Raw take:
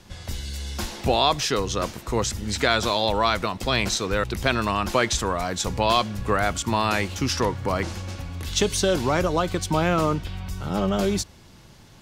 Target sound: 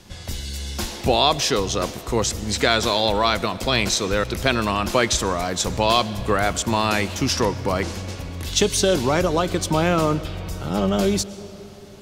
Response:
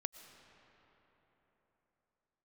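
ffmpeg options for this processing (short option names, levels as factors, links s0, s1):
-filter_complex "[0:a]asplit=2[s0][s1];[s1]equalizer=f=1200:w=0.88:g=-8[s2];[1:a]atrim=start_sample=2205,lowshelf=f=140:g=-9[s3];[s2][s3]afir=irnorm=-1:irlink=0,volume=1.58[s4];[s0][s4]amix=inputs=2:normalize=0,volume=0.75"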